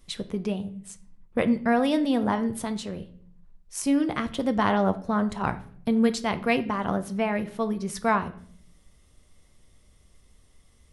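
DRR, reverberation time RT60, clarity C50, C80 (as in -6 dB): 9.5 dB, 0.60 s, 15.5 dB, 19.5 dB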